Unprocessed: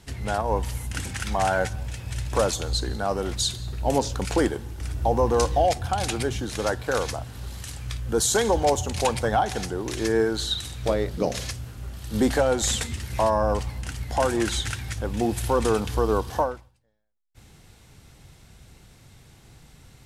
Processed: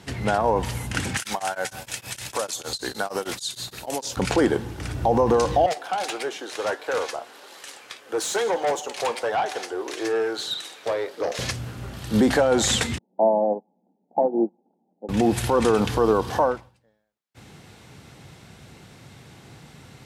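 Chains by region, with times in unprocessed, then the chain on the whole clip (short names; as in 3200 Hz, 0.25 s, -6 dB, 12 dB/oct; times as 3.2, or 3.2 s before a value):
1.17–4.17 RIAA curve recording + compressor 12:1, threshold -27 dBFS + beating tremolo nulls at 6.5 Hz
5.66–11.39 HPF 380 Hz 24 dB/oct + flange 1.6 Hz, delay 5.8 ms, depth 2.9 ms, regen +69% + tube stage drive 27 dB, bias 0.3
12.98–15.09 Chebyshev band-pass 180–860 Hz, order 5 + upward expander 2.5:1, over -40 dBFS
whole clip: HPF 130 Hz 12 dB/oct; high shelf 5500 Hz -9.5 dB; limiter -19 dBFS; gain +8.5 dB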